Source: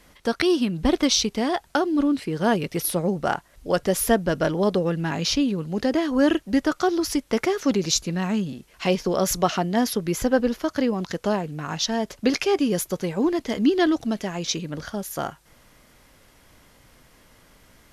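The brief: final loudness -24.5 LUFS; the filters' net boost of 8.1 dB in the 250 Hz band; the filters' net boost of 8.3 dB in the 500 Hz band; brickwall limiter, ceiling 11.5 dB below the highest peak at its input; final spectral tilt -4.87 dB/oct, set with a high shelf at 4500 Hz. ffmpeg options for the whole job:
-af "equalizer=f=250:t=o:g=7.5,equalizer=f=500:t=o:g=8,highshelf=f=4.5k:g=6,volume=-4dB,alimiter=limit=-15dB:level=0:latency=1"

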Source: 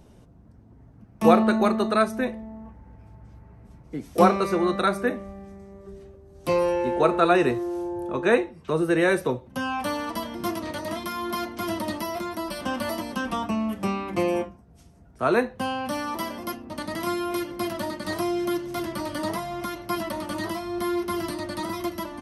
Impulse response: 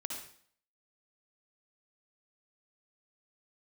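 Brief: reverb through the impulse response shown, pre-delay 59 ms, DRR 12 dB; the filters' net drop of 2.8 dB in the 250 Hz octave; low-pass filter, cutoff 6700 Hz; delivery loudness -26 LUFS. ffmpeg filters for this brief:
-filter_complex "[0:a]lowpass=6.7k,equalizer=f=250:t=o:g=-4,asplit=2[a][b];[1:a]atrim=start_sample=2205,adelay=59[c];[b][c]afir=irnorm=-1:irlink=0,volume=-12dB[d];[a][d]amix=inputs=2:normalize=0,volume=1dB"

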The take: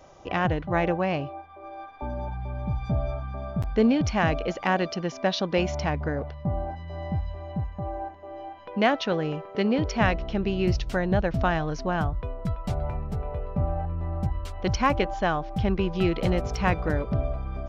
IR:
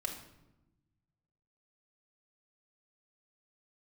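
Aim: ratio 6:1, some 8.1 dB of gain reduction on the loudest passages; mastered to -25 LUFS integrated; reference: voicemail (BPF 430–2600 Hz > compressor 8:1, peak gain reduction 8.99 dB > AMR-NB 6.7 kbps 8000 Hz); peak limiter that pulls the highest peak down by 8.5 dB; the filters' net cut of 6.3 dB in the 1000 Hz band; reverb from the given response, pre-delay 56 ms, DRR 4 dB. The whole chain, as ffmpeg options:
-filter_complex "[0:a]equalizer=f=1k:t=o:g=-8.5,acompressor=threshold=-27dB:ratio=6,alimiter=level_in=1dB:limit=-24dB:level=0:latency=1,volume=-1dB,asplit=2[a][b];[1:a]atrim=start_sample=2205,adelay=56[c];[b][c]afir=irnorm=-1:irlink=0,volume=-5dB[d];[a][d]amix=inputs=2:normalize=0,highpass=430,lowpass=2.6k,acompressor=threshold=-40dB:ratio=8,volume=21dB" -ar 8000 -c:a libopencore_amrnb -b:a 6700

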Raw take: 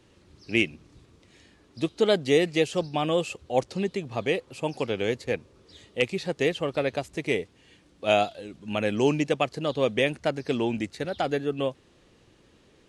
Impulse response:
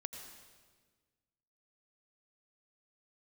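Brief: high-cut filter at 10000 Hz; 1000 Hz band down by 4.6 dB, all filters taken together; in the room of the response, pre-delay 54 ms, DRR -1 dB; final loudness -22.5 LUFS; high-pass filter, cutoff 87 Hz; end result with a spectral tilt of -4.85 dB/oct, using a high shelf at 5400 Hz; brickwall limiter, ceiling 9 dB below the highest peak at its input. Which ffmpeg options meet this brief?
-filter_complex "[0:a]highpass=87,lowpass=10k,equalizer=f=1k:t=o:g=-7,highshelf=f=5.4k:g=-8.5,alimiter=limit=-19dB:level=0:latency=1,asplit=2[a][b];[1:a]atrim=start_sample=2205,adelay=54[c];[b][c]afir=irnorm=-1:irlink=0,volume=3dB[d];[a][d]amix=inputs=2:normalize=0,volume=6.5dB"

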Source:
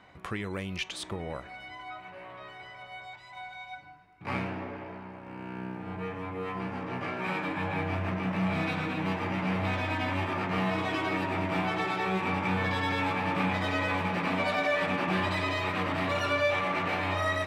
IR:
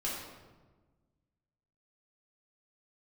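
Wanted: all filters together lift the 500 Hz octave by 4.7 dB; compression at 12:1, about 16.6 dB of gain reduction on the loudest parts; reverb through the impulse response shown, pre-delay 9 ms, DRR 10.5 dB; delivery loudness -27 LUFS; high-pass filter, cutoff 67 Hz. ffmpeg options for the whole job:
-filter_complex "[0:a]highpass=67,equalizer=f=500:t=o:g=6,acompressor=threshold=-37dB:ratio=12,asplit=2[a][b];[1:a]atrim=start_sample=2205,adelay=9[c];[b][c]afir=irnorm=-1:irlink=0,volume=-14.5dB[d];[a][d]amix=inputs=2:normalize=0,volume=13.5dB"

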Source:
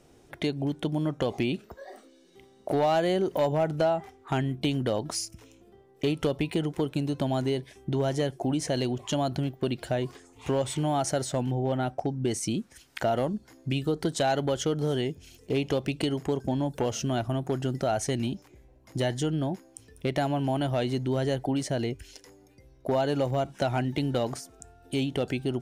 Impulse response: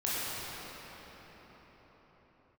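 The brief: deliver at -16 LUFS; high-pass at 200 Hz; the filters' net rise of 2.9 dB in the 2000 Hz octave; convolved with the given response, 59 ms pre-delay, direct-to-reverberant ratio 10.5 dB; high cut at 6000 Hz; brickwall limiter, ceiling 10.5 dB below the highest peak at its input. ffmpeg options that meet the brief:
-filter_complex "[0:a]highpass=200,lowpass=6k,equalizer=f=2k:t=o:g=4,alimiter=limit=-23dB:level=0:latency=1,asplit=2[a][b];[1:a]atrim=start_sample=2205,adelay=59[c];[b][c]afir=irnorm=-1:irlink=0,volume=-20dB[d];[a][d]amix=inputs=2:normalize=0,volume=18dB"

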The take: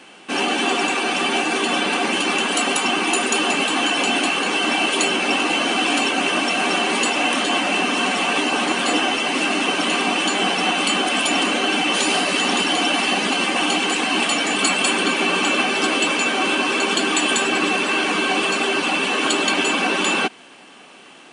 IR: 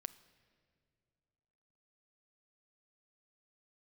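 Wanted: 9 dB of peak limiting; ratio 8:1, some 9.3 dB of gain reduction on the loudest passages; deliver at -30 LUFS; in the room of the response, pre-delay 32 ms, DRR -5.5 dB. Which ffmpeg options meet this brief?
-filter_complex "[0:a]acompressor=threshold=-25dB:ratio=8,alimiter=limit=-22dB:level=0:latency=1,asplit=2[a][b];[1:a]atrim=start_sample=2205,adelay=32[c];[b][c]afir=irnorm=-1:irlink=0,volume=9.5dB[d];[a][d]amix=inputs=2:normalize=0,volume=-7dB"

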